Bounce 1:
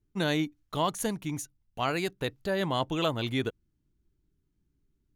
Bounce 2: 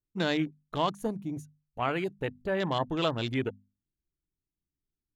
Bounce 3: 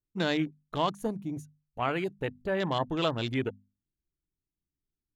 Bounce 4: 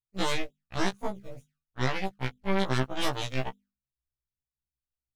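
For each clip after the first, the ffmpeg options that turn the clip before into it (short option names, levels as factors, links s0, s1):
-af "afwtdn=0.0126,bandreject=f=50:t=h:w=6,bandreject=f=100:t=h:w=6,bandreject=f=150:t=h:w=6,bandreject=f=200:t=h:w=6,bandreject=f=250:t=h:w=6"
-af anull
-filter_complex "[0:a]acrossover=split=150[s0][s1];[s0]acrusher=samples=23:mix=1:aa=0.000001:lfo=1:lforange=23:lforate=3.3[s2];[s1]aeval=exprs='0.237*(cos(1*acos(clip(val(0)/0.237,-1,1)))-cos(1*PI/2))+0.0376*(cos(3*acos(clip(val(0)/0.237,-1,1)))-cos(3*PI/2))+0.0106*(cos(5*acos(clip(val(0)/0.237,-1,1)))-cos(5*PI/2))+0.106*(cos(6*acos(clip(val(0)/0.237,-1,1)))-cos(6*PI/2))+0.0168*(cos(7*acos(clip(val(0)/0.237,-1,1)))-cos(7*PI/2))':c=same[s3];[s2][s3]amix=inputs=2:normalize=0,afftfilt=real='re*1.73*eq(mod(b,3),0)':imag='im*1.73*eq(mod(b,3),0)':win_size=2048:overlap=0.75,volume=0.794"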